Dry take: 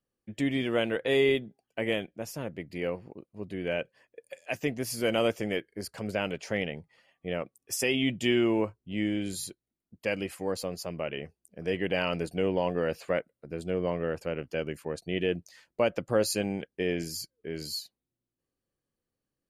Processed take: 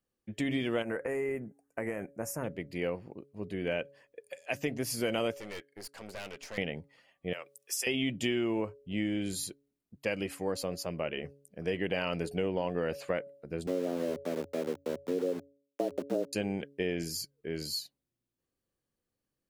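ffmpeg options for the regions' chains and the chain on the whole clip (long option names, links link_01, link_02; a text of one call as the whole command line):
ffmpeg -i in.wav -filter_complex "[0:a]asettb=1/sr,asplit=3[link_01][link_02][link_03];[link_01]atrim=end=0.824[link_04];[link_02]atrim=start=0.82:end=2.44,asetpts=PTS-STARTPTS,afade=type=in:duration=0.004:curve=qsin,afade=type=out:start_time=1.616:duration=0.004:curve=qsin,equalizer=frequency=4700:width=0.32:gain=9.5,acompressor=threshold=-27dB:ratio=5:attack=3.2:release=140:knee=1:detection=peak,asuperstop=centerf=3600:order=4:qfactor=0.6[link_05];[link_03]atrim=start=2.436[link_06];[link_04][link_05]acrossfade=duration=0.004:curve1=hsin:curve2=qsin[link_07];[link_07][link_06]acrossfade=duration=0.004:curve1=qsin:curve2=hsin,asettb=1/sr,asplit=3[link_08][link_09][link_10];[link_08]atrim=end=5.344[link_11];[link_09]atrim=start=5.34:end=6.58,asetpts=PTS-STARTPTS,afade=type=in:duration=0.004:curve=qsin,afade=type=out:start_time=1.236:duration=0.004:curve=qsin,highpass=frequency=600:poles=1,aeval=exprs='(tanh(79.4*val(0)+0.65)-tanh(0.65))/79.4':channel_layout=same[link_12];[link_10]atrim=start=6.576[link_13];[link_11][link_12]acrossfade=duration=0.004:curve1=hsin:curve2=qsin[link_14];[link_14][link_13]acrossfade=duration=0.004:curve1=qsin:curve2=hsin,asettb=1/sr,asplit=3[link_15][link_16][link_17];[link_15]atrim=end=7.334[link_18];[link_16]atrim=start=7.33:end=7.87,asetpts=PTS-STARTPTS,afade=type=in:duration=0.004:curve=qsin,afade=type=out:start_time=0.536:duration=0.004:curve=qsin,highpass=frequency=310:width=0.5412,highpass=frequency=310:width=1.3066,tiltshelf=frequency=1100:gain=-9.5,acompressor=threshold=-49dB:ratio=1.5:attack=3.2:release=140:knee=1:detection=peak[link_19];[link_17]atrim=start=7.866[link_20];[link_18][link_19]acrossfade=duration=0.004:curve1=hsin:curve2=qsin[link_21];[link_21][link_20]acrossfade=duration=0.004:curve1=qsin:curve2=hsin,asettb=1/sr,asplit=3[link_22][link_23][link_24];[link_22]atrim=end=13.674[link_25];[link_23]atrim=start=13.67:end=16.33,asetpts=PTS-STARTPTS,afade=type=in:duration=0.004:curve=qsin,afade=type=out:start_time=2.656:duration=0.004:curve=qsin,lowpass=frequency=350:width_type=q:width=1.7,aeval=exprs='val(0)*gte(abs(val(0)),0.0133)':channel_layout=same,afreqshift=86[link_26];[link_24]atrim=start=16.326[link_27];[link_25][link_26]acrossfade=duration=0.004:curve1=hsin:curve2=qsin[link_28];[link_28][link_27]acrossfade=duration=0.004:curve1=qsin:curve2=hsin,bandreject=frequency=140.4:width_type=h:width=4,bandreject=frequency=280.8:width_type=h:width=4,bandreject=frequency=421.2:width_type=h:width=4,bandreject=frequency=561.6:width_type=h:width=4,acompressor=threshold=-27dB:ratio=6" out.wav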